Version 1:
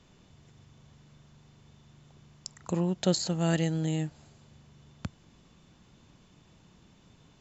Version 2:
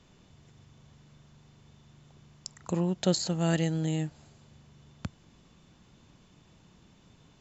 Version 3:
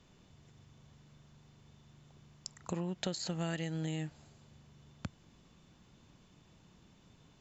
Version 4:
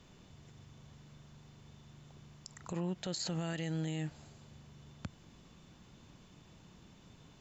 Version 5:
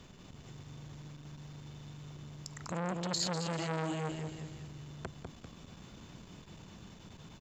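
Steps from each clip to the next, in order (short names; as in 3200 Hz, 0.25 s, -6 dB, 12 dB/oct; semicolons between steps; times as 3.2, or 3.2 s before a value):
nothing audible
dynamic EQ 2100 Hz, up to +6 dB, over -49 dBFS, Q 0.77; compressor 12:1, threshold -29 dBFS, peak gain reduction 11 dB; gain -3.5 dB
limiter -32.5 dBFS, peak gain reduction 11.5 dB; gain +4 dB
feedback echo 0.198 s, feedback 40%, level -5 dB; core saturation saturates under 1400 Hz; gain +6.5 dB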